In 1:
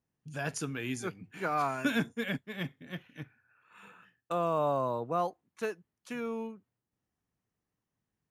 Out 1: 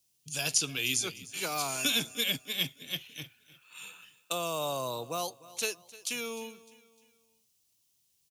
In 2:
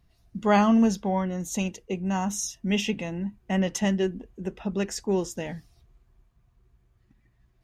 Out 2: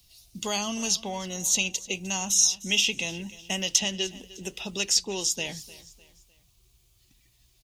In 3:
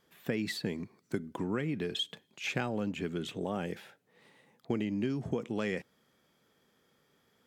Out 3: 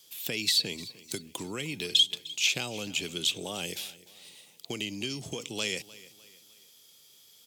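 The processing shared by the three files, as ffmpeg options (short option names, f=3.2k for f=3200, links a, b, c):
-filter_complex "[0:a]equalizer=f=210:t=o:w=0.68:g=-5,acrossover=split=99|790|4800[a][b][c][d];[a]acompressor=threshold=-53dB:ratio=4[e];[b]acompressor=threshold=-31dB:ratio=4[f];[c]acompressor=threshold=-36dB:ratio=4[g];[d]acompressor=threshold=-54dB:ratio=4[h];[e][f][g][h]amix=inputs=4:normalize=0,aexciter=amount=13.2:drive=2.6:freq=2.6k,aecho=1:1:303|606|909:0.112|0.0449|0.018,volume=-2dB"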